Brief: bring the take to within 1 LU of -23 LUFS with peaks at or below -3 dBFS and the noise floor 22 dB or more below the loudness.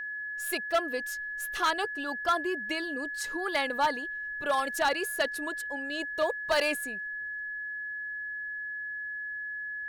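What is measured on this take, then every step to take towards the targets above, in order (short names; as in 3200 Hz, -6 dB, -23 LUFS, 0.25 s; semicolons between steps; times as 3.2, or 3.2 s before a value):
clipped 0.6%; flat tops at -20.0 dBFS; steady tone 1700 Hz; tone level -34 dBFS; loudness -31.0 LUFS; peak -20.0 dBFS; loudness target -23.0 LUFS
-> clip repair -20 dBFS; notch 1700 Hz, Q 30; gain +8 dB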